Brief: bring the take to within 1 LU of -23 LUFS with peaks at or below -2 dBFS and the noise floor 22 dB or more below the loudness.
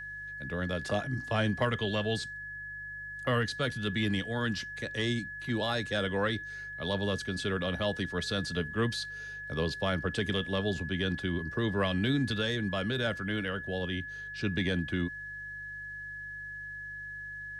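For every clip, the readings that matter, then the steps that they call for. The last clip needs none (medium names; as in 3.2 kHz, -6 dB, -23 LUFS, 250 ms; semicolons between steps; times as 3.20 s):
hum 50 Hz; highest harmonic 150 Hz; hum level -54 dBFS; steady tone 1.7 kHz; tone level -39 dBFS; loudness -32.5 LUFS; peak level -16.5 dBFS; loudness target -23.0 LUFS
-> de-hum 50 Hz, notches 3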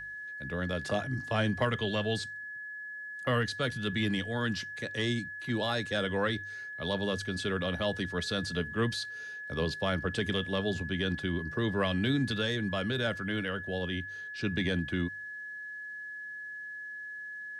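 hum not found; steady tone 1.7 kHz; tone level -39 dBFS
-> band-stop 1.7 kHz, Q 30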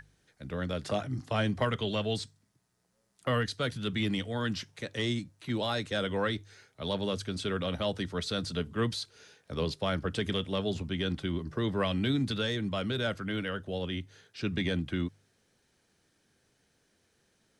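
steady tone not found; loudness -32.5 LUFS; peak level -17.0 dBFS; loudness target -23.0 LUFS
-> trim +9.5 dB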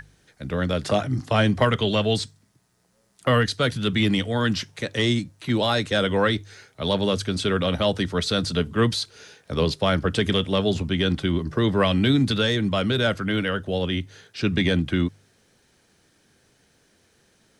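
loudness -23.0 LUFS; peak level -7.5 dBFS; noise floor -63 dBFS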